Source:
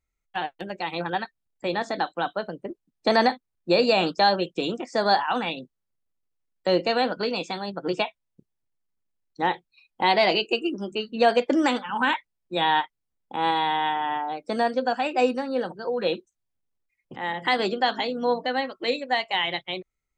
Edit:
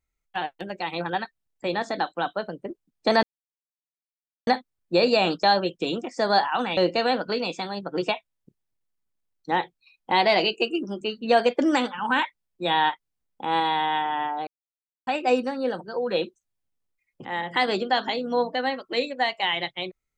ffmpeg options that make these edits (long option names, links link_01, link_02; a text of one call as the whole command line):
ffmpeg -i in.wav -filter_complex "[0:a]asplit=5[link_01][link_02][link_03][link_04][link_05];[link_01]atrim=end=3.23,asetpts=PTS-STARTPTS,afade=type=out:start_time=3.226:duration=0.004:curve=hsin,apad=pad_dur=1.24[link_06];[link_02]atrim=start=3.23:end=5.532,asetpts=PTS-STARTPTS,afade=type=in:duration=0.004:curve=hsin[link_07];[link_03]atrim=start=6.678:end=14.38,asetpts=PTS-STARTPTS,afade=type=out:start_time=7.698:duration=0.004:curve=hsin[link_08];[link_04]atrim=start=14.38:end=14.98,asetpts=PTS-STARTPTS,volume=0[link_09];[link_05]atrim=start=14.98,asetpts=PTS-STARTPTS,afade=type=in:duration=0.004:curve=hsin[link_10];[link_06][link_07]concat=n=2:v=0:a=1[link_11];[link_08][link_09][link_10]concat=n=3:v=0:a=1[link_12];[link_11][link_12]acrossfade=duration=0.004:curve1=hsin:curve2=hsin" out.wav